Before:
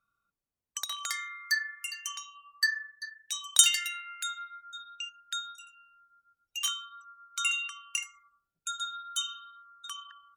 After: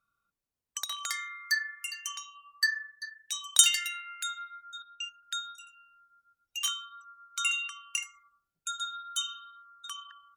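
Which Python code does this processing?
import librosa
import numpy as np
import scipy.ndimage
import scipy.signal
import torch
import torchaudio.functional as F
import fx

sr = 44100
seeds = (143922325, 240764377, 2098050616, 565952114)

y = fx.band_widen(x, sr, depth_pct=70, at=(4.82, 5.23))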